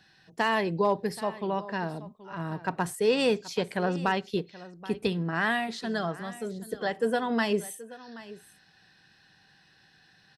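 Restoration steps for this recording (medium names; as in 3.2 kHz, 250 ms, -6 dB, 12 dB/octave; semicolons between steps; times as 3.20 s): clip repair -14.5 dBFS; inverse comb 778 ms -17.5 dB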